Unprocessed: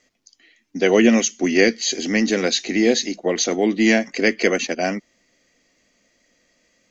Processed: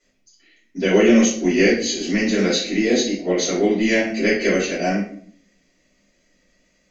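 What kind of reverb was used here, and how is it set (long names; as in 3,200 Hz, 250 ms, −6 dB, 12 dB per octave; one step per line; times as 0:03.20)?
rectangular room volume 64 cubic metres, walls mixed, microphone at 3 metres
level −13 dB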